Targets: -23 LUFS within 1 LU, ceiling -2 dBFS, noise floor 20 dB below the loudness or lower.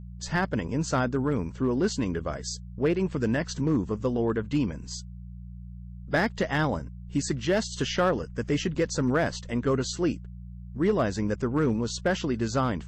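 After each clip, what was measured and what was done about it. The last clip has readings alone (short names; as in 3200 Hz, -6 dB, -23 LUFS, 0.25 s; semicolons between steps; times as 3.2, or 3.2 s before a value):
clipped 0.5%; flat tops at -16.5 dBFS; hum 60 Hz; harmonics up to 180 Hz; hum level -39 dBFS; loudness -27.5 LUFS; peak -16.5 dBFS; loudness target -23.0 LUFS
-> clip repair -16.5 dBFS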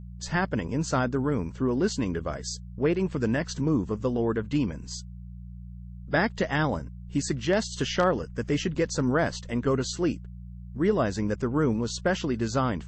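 clipped 0.0%; hum 60 Hz; harmonics up to 180 Hz; hum level -39 dBFS
-> de-hum 60 Hz, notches 3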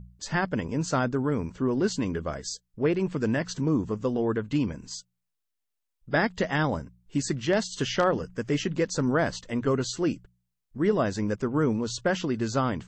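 hum none; loudness -27.5 LUFS; peak -10.0 dBFS; loudness target -23.0 LUFS
-> gain +4.5 dB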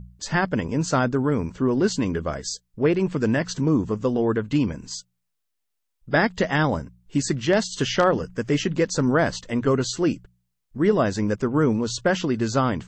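loudness -23.0 LUFS; peak -5.5 dBFS; noise floor -77 dBFS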